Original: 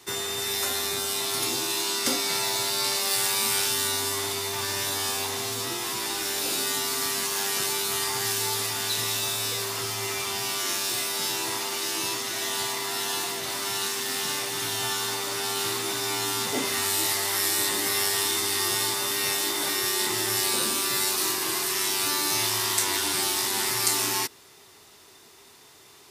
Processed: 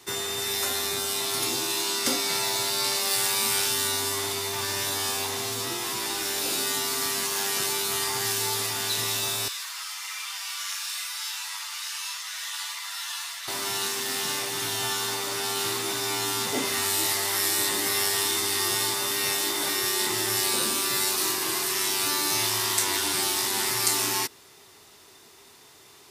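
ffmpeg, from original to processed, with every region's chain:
-filter_complex "[0:a]asettb=1/sr,asplit=3[a][b][c];[a]atrim=end=9.484[d];[b]atrim=start=9.48:end=13.48,asetpts=PTS-STARTPTS,afade=t=in:d=0.004:c=qsin,afade=t=out:st=3.996:d=0.004:c=qsin,highpass=f=1.1k:w=0.5412,highpass=f=1.1k:w=1.3066,highshelf=f=11k:g=-5.5,flanger=delay=5.6:depth=6.2:regen=-3:speed=1.1:shape=triangular[e];[c]atrim=start=13.476[f];[d][e]acrossfade=d=0.004:c1=hsin:c2=qsin[g];[g][f]acrossfade=d=0.004:c1=qsin:c2=hsin"

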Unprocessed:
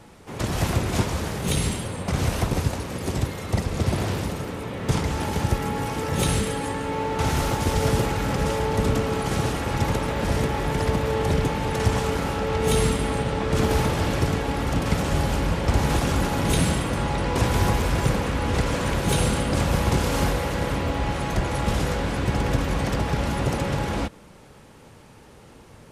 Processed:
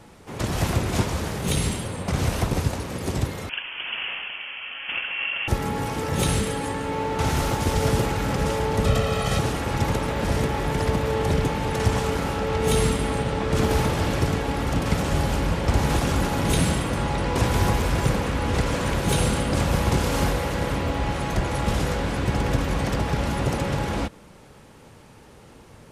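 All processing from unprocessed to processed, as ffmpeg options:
-filter_complex "[0:a]asettb=1/sr,asplit=3[a][b][c];[a]atrim=end=3.494[d];[b]atrim=start=3.49:end=5.48,asetpts=PTS-STARTPTS,afade=t=in:d=0.004:c=qsin,afade=t=out:st=1.986:d=0.004:c=qsin,highpass=f=840:t=q:w=1.9,lowpass=f=3.1k:t=q:w=0.5098,lowpass=f=3.1k:t=q:w=0.6013,lowpass=f=3.1k:t=q:w=0.9,lowpass=f=3.1k:t=q:w=2.563,afreqshift=-3600[e];[c]atrim=start=5.476[f];[d][e]acrossfade=d=0.004:c1=hsin:c2=qsin[g];[g][f]acrossfade=d=0.004:c1=qsin:c2=hsin,asettb=1/sr,asplit=3[h][i][j];[h]atrim=end=8.854[k];[i]atrim=start=8.85:end=9.39,asetpts=PTS-STARTPTS,afade=t=in:d=0.004:c=qsin,afade=t=out:st=0.536:d=0.004:c=qsin,equalizer=f=3.3k:t=o:w=1:g=4,aecho=1:1:1.6:0.63,atrim=end_sample=23814[l];[j]atrim=start=9.386[m];[k][l]acrossfade=d=0.004:c1=hsin:c2=qsin[n];[n][m]acrossfade=d=0.004:c1=qsin:c2=hsin"

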